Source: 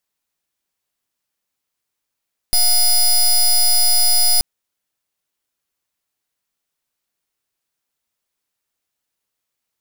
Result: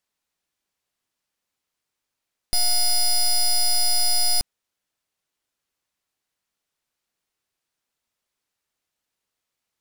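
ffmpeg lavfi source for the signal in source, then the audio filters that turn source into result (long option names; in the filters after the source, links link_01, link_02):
-f lavfi -i "aevalsrc='0.224*(2*lt(mod(4980*t,1),0.16)-1)':duration=1.88:sample_rate=44100"
-af "highshelf=frequency=11000:gain=-9.5,asoftclip=type=tanh:threshold=-16dB"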